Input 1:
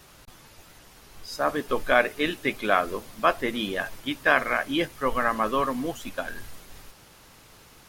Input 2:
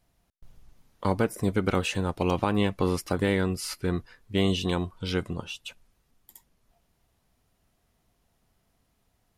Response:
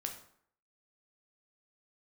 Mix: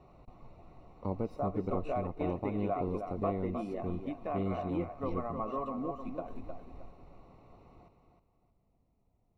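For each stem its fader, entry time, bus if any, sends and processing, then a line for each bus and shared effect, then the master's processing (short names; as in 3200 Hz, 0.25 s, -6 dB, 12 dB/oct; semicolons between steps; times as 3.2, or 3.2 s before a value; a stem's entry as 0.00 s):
-2.0 dB, 0.00 s, no send, echo send -7 dB, median filter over 5 samples; compressor 2.5:1, threshold -33 dBFS, peak gain reduction 12.5 dB; small resonant body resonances 710/1100 Hz, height 9 dB
-1.5 dB, 0.00 s, no send, no echo send, auto duck -8 dB, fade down 1.30 s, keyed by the first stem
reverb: off
echo: feedback echo 0.311 s, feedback 29%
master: running mean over 27 samples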